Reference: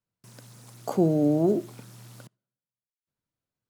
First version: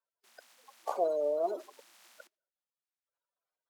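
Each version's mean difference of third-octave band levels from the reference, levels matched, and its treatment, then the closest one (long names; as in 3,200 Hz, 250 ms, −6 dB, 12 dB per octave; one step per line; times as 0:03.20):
8.0 dB: spectral magnitudes quantised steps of 30 dB
high-pass filter 580 Hz 24 dB per octave
high-shelf EQ 8,400 Hz −11 dB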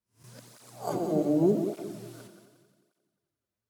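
4.5 dB: peak hold with a rise ahead of every peak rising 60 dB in 0.32 s
echo machine with several playback heads 89 ms, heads first and second, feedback 56%, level −11.5 dB
through-zero flanger with one copy inverted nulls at 0.85 Hz, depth 7.6 ms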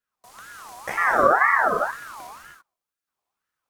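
10.5 dB: in parallel at +1.5 dB: brickwall limiter −19 dBFS, peak gain reduction 7.5 dB
on the sum: reverb whose tail is shaped and stops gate 360 ms flat, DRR −3.5 dB
ring modulator whose carrier an LFO sweeps 1,200 Hz, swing 30%, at 2 Hz
level −3 dB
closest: second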